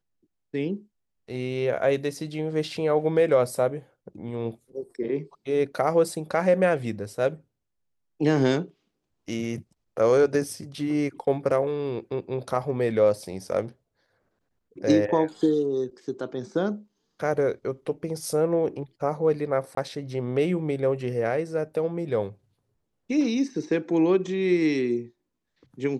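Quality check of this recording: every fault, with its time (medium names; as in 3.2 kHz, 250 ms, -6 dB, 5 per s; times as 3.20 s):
19.75–19.77 s: dropout 23 ms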